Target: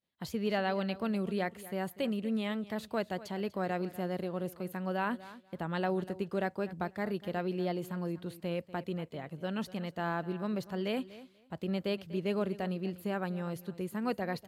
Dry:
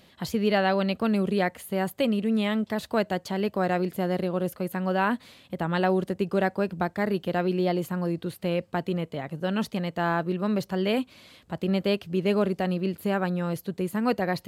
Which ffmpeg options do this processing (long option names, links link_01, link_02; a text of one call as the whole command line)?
ffmpeg -i in.wav -filter_complex "[0:a]agate=range=-33dB:threshold=-42dB:ratio=3:detection=peak,asplit=2[link_01][link_02];[link_02]aecho=0:1:243|486:0.141|0.024[link_03];[link_01][link_03]amix=inputs=2:normalize=0,volume=-8.5dB" out.wav